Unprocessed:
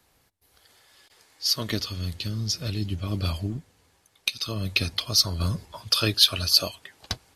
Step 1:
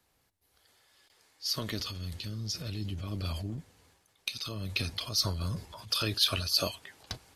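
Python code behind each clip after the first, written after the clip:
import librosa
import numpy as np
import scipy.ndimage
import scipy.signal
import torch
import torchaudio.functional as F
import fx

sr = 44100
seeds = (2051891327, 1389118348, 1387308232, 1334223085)

y = fx.transient(x, sr, attack_db=-1, sustain_db=8)
y = F.gain(torch.from_numpy(y), -8.0).numpy()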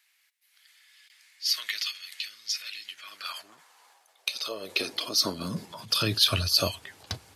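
y = fx.low_shelf(x, sr, hz=130.0, db=-6.5)
y = fx.filter_sweep_highpass(y, sr, from_hz=2100.0, to_hz=84.0, start_s=2.82, end_s=6.59, q=2.4)
y = F.gain(torch.from_numpy(y), 4.5).numpy()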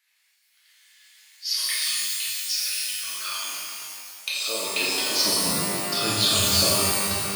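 y = scipy.signal.sosfilt(scipy.signal.butter(2, 72.0, 'highpass', fs=sr, output='sos'), x)
y = fx.rider(y, sr, range_db=4, speed_s=2.0)
y = fx.rev_shimmer(y, sr, seeds[0], rt60_s=2.0, semitones=12, shimmer_db=-2, drr_db=-6.5)
y = F.gain(torch.from_numpy(y), -4.5).numpy()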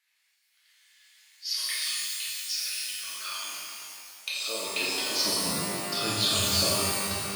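y = fx.high_shelf(x, sr, hz=10000.0, db=-4.0)
y = F.gain(torch.from_numpy(y), -4.0).numpy()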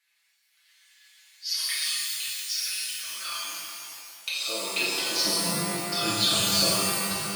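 y = x + 0.7 * np.pad(x, (int(5.9 * sr / 1000.0), 0))[:len(x)]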